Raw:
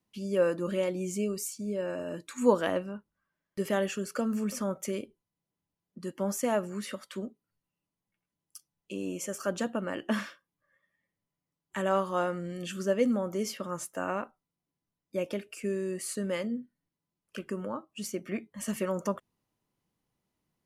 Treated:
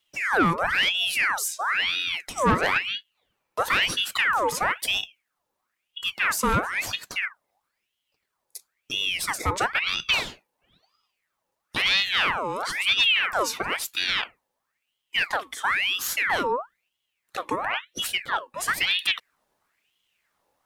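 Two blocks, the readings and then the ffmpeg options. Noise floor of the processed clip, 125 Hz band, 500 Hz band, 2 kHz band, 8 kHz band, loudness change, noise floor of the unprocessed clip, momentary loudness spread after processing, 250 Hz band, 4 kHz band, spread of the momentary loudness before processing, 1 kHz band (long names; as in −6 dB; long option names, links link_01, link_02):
−81 dBFS, +2.5 dB, −2.5 dB, +18.5 dB, +7.0 dB, +8.5 dB, below −85 dBFS, 10 LU, −3.0 dB, +21.5 dB, 12 LU, +11.0 dB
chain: -af "acontrast=83,asoftclip=type=tanh:threshold=-17.5dB,aeval=exprs='val(0)*sin(2*PI*1900*n/s+1900*0.65/1*sin(2*PI*1*n/s))':channel_layout=same,volume=4.5dB"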